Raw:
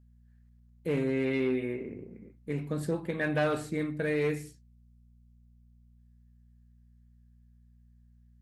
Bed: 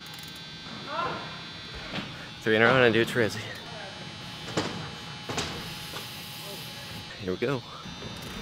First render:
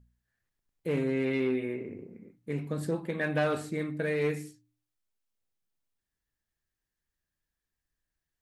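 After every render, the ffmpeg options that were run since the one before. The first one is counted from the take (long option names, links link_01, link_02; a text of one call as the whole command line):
ffmpeg -i in.wav -af "bandreject=frequency=60:width_type=h:width=4,bandreject=frequency=120:width_type=h:width=4,bandreject=frequency=180:width_type=h:width=4,bandreject=frequency=240:width_type=h:width=4,bandreject=frequency=300:width_type=h:width=4" out.wav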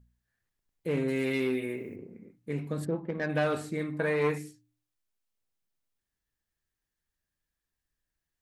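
ffmpeg -i in.wav -filter_complex "[0:a]asettb=1/sr,asplit=3[link_01][link_02][link_03];[link_01]atrim=end=1.084[link_04];[link_02]atrim=start=1.08:end=1.96,asetpts=PTS-STARTPTS,afade=type=in:duration=0.004:curve=qsin,afade=type=out:start_time=0.876:duration=0.004:curve=qsin,aemphasis=mode=production:type=75fm[link_05];[link_03]atrim=start=1.956[link_06];[link_04][link_05]acrossfade=duration=0.004:curve1=hsin:curve2=qsin[link_07];[link_07][link_06]acrossfade=duration=0.004:curve1=qsin:curve2=hsin,asplit=3[link_08][link_09][link_10];[link_08]afade=type=out:start_time=2.84:duration=0.02[link_11];[link_09]adynamicsmooth=sensitivity=1.5:basefreq=1200,afade=type=in:start_time=2.84:duration=0.02,afade=type=out:start_time=3.28:duration=0.02[link_12];[link_10]afade=type=in:start_time=3.28:duration=0.02[link_13];[link_11][link_12][link_13]amix=inputs=3:normalize=0,asettb=1/sr,asplit=3[link_14][link_15][link_16];[link_14]atrim=end=3.934[link_17];[link_15]atrim=start=3.93:end=4.38,asetpts=PTS-STARTPTS,afade=type=in:duration=0.004:curve=qsin,afade=type=out:start_time=0.446:duration=0.004:curve=qsin,equalizer=frequency=1000:width=1.9:gain=14.5[link_18];[link_16]atrim=start=4.376[link_19];[link_17][link_18]acrossfade=duration=0.004:curve1=hsin:curve2=qsin[link_20];[link_20][link_19]acrossfade=duration=0.004:curve1=qsin:curve2=hsin" out.wav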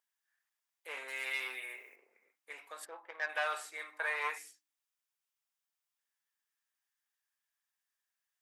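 ffmpeg -i in.wav -af "highpass=frequency=820:width=0.5412,highpass=frequency=820:width=1.3066,bandreject=frequency=4200:width=13" out.wav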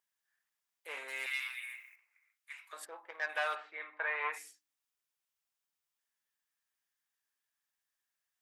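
ffmpeg -i in.wav -filter_complex "[0:a]asettb=1/sr,asplit=3[link_01][link_02][link_03];[link_01]atrim=end=1.264[link_04];[link_02]atrim=start=1.26:end=2.73,asetpts=PTS-STARTPTS,afade=type=in:duration=0.004:curve=qsin,afade=type=out:start_time=1.466:duration=0.004:curve=qsin,highpass=frequency=1200:width=0.5412,highpass=frequency=1200:width=1.3066[link_05];[link_03]atrim=start=2.726[link_06];[link_04][link_05]acrossfade=duration=0.004:curve1=hsin:curve2=qsin[link_07];[link_07][link_06]acrossfade=duration=0.004:curve1=qsin:curve2=hsin,asplit=3[link_08][link_09][link_10];[link_08]afade=type=out:start_time=3.54:duration=0.02[link_11];[link_09]lowpass=frequency=3000:width=0.5412,lowpass=frequency=3000:width=1.3066,afade=type=in:start_time=3.54:duration=0.02,afade=type=out:start_time=4.32:duration=0.02[link_12];[link_10]afade=type=in:start_time=4.32:duration=0.02[link_13];[link_11][link_12][link_13]amix=inputs=3:normalize=0" out.wav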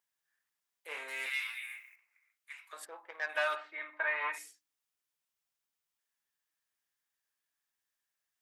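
ffmpeg -i in.wav -filter_complex "[0:a]asettb=1/sr,asplit=3[link_01][link_02][link_03];[link_01]atrim=end=0.884[link_04];[link_02]atrim=start=0.88:end=1.8,asetpts=PTS-STARTPTS,afade=type=in:duration=0.004:curve=qsin,afade=type=out:start_time=0.916:duration=0.004:curve=qsin,asplit=2[link_05][link_06];[link_06]adelay=27,volume=-5dB[link_07];[link_05][link_07]amix=inputs=2:normalize=0,atrim=end_sample=40572[link_08];[link_03]atrim=start=1.796[link_09];[link_04][link_08]acrossfade=duration=0.004:curve1=hsin:curve2=qsin[link_10];[link_10][link_09]acrossfade=duration=0.004:curve1=qsin:curve2=hsin,asettb=1/sr,asplit=3[link_11][link_12][link_13];[link_11]atrim=end=3.344[link_14];[link_12]atrim=start=3.34:end=4.46,asetpts=PTS-STARTPTS,afade=type=in:duration=0.004:curve=qsin,afade=type=out:start_time=1.116:duration=0.004:curve=qsin,aecho=1:1:3.2:0.75,atrim=end_sample=49392[link_15];[link_13]atrim=start=4.456[link_16];[link_14][link_15]acrossfade=duration=0.004:curve1=hsin:curve2=qsin[link_17];[link_17][link_16]acrossfade=duration=0.004:curve1=qsin:curve2=hsin" out.wav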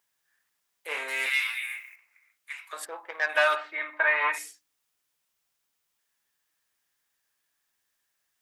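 ffmpeg -i in.wav -af "volume=9.5dB" out.wav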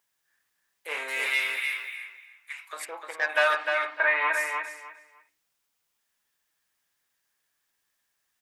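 ffmpeg -i in.wav -filter_complex "[0:a]asplit=2[link_01][link_02];[link_02]adelay=303,lowpass=frequency=4600:poles=1,volume=-4.5dB,asplit=2[link_03][link_04];[link_04]adelay=303,lowpass=frequency=4600:poles=1,volume=0.22,asplit=2[link_05][link_06];[link_06]adelay=303,lowpass=frequency=4600:poles=1,volume=0.22[link_07];[link_01][link_03][link_05][link_07]amix=inputs=4:normalize=0" out.wav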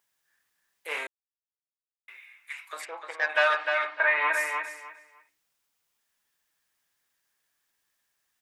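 ffmpeg -i in.wav -filter_complex "[0:a]asettb=1/sr,asplit=3[link_01][link_02][link_03];[link_01]atrim=end=2.814[link_04];[link_02]atrim=start=2.81:end=4.18,asetpts=PTS-STARTPTS,afade=type=in:duration=0.004:curve=qsin,afade=type=out:start_time=1.366:duration=0.004:curve=qsin,highpass=350,lowpass=6200[link_05];[link_03]atrim=start=4.176[link_06];[link_04][link_05]acrossfade=duration=0.004:curve1=hsin:curve2=qsin[link_07];[link_07][link_06]acrossfade=duration=0.004:curve1=qsin:curve2=hsin,asplit=3[link_08][link_09][link_10];[link_08]atrim=end=1.07,asetpts=PTS-STARTPTS,afade=type=out:start_time=1.066:duration=0.004:curve=hsin[link_11];[link_09]atrim=start=1.07:end=2.08,asetpts=PTS-STARTPTS,volume=0[link_12];[link_10]atrim=start=2.08,asetpts=PTS-STARTPTS,afade=type=in:duration=0.004:curve=hsin[link_13];[link_11][link_12][link_13]concat=n=3:v=0:a=1" out.wav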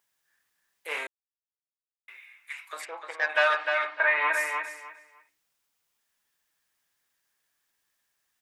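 ffmpeg -i in.wav -af anull out.wav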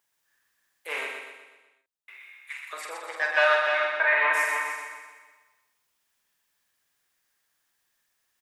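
ffmpeg -i in.wav -filter_complex "[0:a]asplit=2[link_01][link_02];[link_02]adelay=48,volume=-6.5dB[link_03];[link_01][link_03]amix=inputs=2:normalize=0,asplit=2[link_04][link_05];[link_05]aecho=0:1:124|248|372|496|620|744:0.562|0.281|0.141|0.0703|0.0351|0.0176[link_06];[link_04][link_06]amix=inputs=2:normalize=0" out.wav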